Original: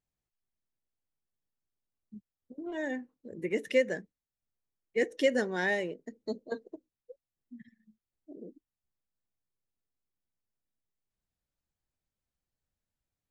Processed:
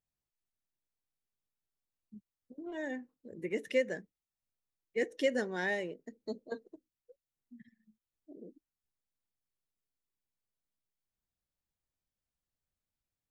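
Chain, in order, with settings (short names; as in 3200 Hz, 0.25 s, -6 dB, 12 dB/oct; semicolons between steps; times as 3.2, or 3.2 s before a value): 6.63–7.6 dynamic EQ 620 Hz, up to -7 dB, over -60 dBFS, Q 0.75; gain -4 dB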